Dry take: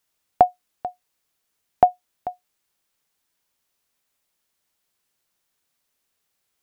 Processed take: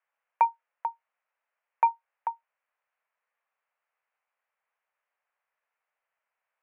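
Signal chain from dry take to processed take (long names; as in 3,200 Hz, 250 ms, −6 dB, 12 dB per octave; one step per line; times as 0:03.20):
mid-hump overdrive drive 18 dB, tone 1,200 Hz, clips at −2 dBFS
single-sideband voice off tune +200 Hz 260–2,400 Hz
level −9 dB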